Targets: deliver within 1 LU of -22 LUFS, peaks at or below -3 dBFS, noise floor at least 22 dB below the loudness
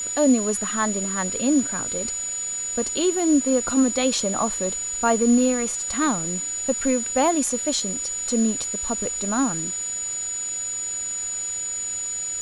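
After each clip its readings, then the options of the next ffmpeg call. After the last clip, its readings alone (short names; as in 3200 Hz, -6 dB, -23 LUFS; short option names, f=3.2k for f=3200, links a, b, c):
steady tone 6900 Hz; tone level -26 dBFS; noise floor -29 dBFS; noise floor target -45 dBFS; loudness -22.5 LUFS; peak -6.5 dBFS; loudness target -22.0 LUFS
-> -af "bandreject=f=6.9k:w=30"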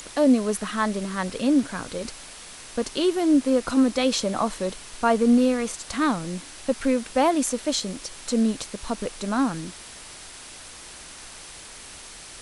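steady tone none; noise floor -43 dBFS; noise floor target -46 dBFS
-> -af "afftdn=nr=6:nf=-43"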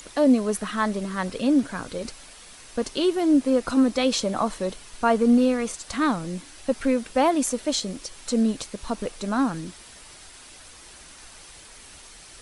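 noise floor -47 dBFS; loudness -24.0 LUFS; peak -7.5 dBFS; loudness target -22.0 LUFS
-> -af "volume=2dB"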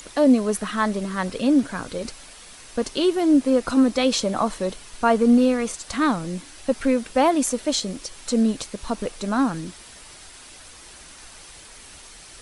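loudness -22.0 LUFS; peak -5.5 dBFS; noise floor -45 dBFS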